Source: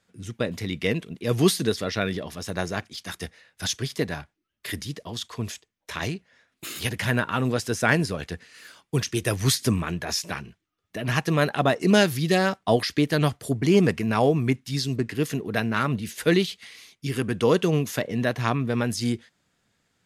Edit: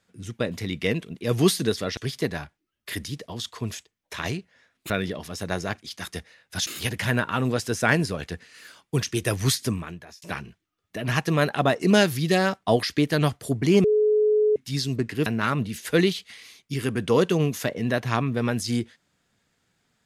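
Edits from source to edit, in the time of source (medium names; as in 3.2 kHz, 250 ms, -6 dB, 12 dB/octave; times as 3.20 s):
1.97–3.74 s: move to 6.67 s
9.42–10.22 s: fade out
13.84–14.56 s: bleep 425 Hz -16.5 dBFS
15.26–15.59 s: delete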